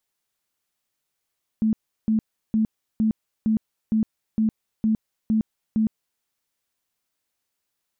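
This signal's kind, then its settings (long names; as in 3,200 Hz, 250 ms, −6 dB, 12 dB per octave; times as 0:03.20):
tone bursts 219 Hz, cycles 24, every 0.46 s, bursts 10, −17 dBFS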